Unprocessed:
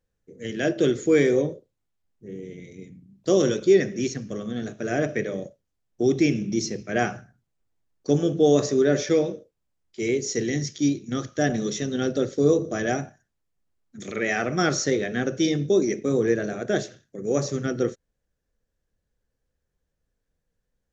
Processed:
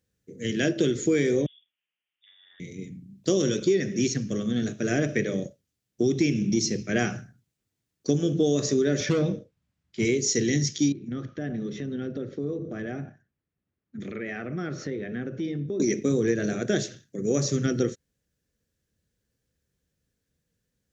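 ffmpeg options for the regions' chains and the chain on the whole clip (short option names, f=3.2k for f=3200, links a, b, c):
-filter_complex "[0:a]asettb=1/sr,asplit=3[a][b][c];[a]atrim=end=1.464[d];[b]atrim=start=1.46:end=2.6,asetpts=PTS-STARTPTS,afade=t=in:d=0.004:c=qsin,afade=t=out:st=1.136:d=0.004:c=qsin,acompressor=threshold=-43dB:ratio=8:attack=3.2:release=140:knee=1:detection=peak,highpass=f=1k:t=q:w=1.9,lowpass=f=3.3k:t=q:w=0.5098,lowpass=f=3.3k:t=q:w=0.6013,lowpass=f=3.3k:t=q:w=0.9,lowpass=f=3.3k:t=q:w=2.563,afreqshift=-3900[e];[c]atrim=start=2.596[f];[d][e]acrossfade=d=0.004:c1=hsin:c2=qsin[g];[g][f]acrossfade=d=0.004:c1=qsin:c2=hsin,asettb=1/sr,asplit=3[h][i][j];[h]atrim=end=9.004[k];[i]atrim=start=9:end=10.05,asetpts=PTS-STARTPTS,afade=t=in:d=0.004:c=qsin,afade=t=out:st=1.046:d=0.004:c=qsin,lowpass=f=1.2k:p=1,equalizer=f=390:t=o:w=1.2:g=-10.5,aeval=exprs='0.133*sin(PI/2*1.78*val(0)/0.133)':c=same[l];[j]atrim=start=10.046[m];[k][l]acrossfade=d=0.004:c1=hsin:c2=qsin[n];[n][m]acrossfade=d=0.004:c1=qsin:c2=hsin,asettb=1/sr,asplit=3[o][p][q];[o]atrim=end=10.924[r];[p]atrim=start=10.92:end=15.8,asetpts=PTS-STARTPTS,afade=t=in:d=0.004:c=qsin,afade=t=out:st=4.876:d=0.004:c=qsin,lowpass=1.9k,acompressor=threshold=-36dB:ratio=2.5:attack=3.2:release=140:knee=1:detection=peak[s];[q]atrim=start=15.796[t];[r][s]acrossfade=d=0.004:c1=hsin:c2=qsin[u];[u][t]acrossfade=d=0.004:c1=qsin:c2=hsin,highpass=85,equalizer=f=830:w=0.73:g=-11,acompressor=threshold=-26dB:ratio=5,volume=6.5dB"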